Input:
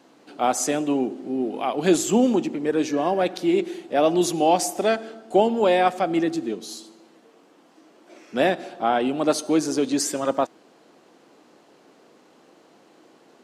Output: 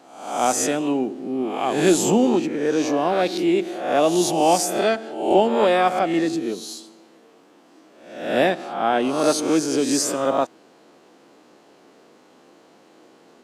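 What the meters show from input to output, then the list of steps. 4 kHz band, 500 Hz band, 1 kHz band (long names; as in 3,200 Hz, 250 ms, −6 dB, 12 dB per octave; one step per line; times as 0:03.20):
+3.5 dB, +2.0 dB, +2.0 dB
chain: peak hold with a rise ahead of every peak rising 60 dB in 0.72 s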